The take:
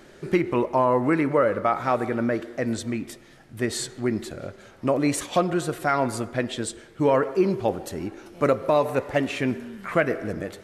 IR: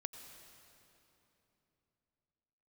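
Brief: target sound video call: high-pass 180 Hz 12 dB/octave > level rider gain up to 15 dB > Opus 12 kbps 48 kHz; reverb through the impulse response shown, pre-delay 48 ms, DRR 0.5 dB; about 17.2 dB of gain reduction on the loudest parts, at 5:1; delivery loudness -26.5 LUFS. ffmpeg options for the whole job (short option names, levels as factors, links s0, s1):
-filter_complex "[0:a]acompressor=threshold=0.0158:ratio=5,asplit=2[s0][s1];[1:a]atrim=start_sample=2205,adelay=48[s2];[s1][s2]afir=irnorm=-1:irlink=0,volume=1.26[s3];[s0][s3]amix=inputs=2:normalize=0,highpass=180,dynaudnorm=m=5.62,volume=3.76" -ar 48000 -c:a libopus -b:a 12k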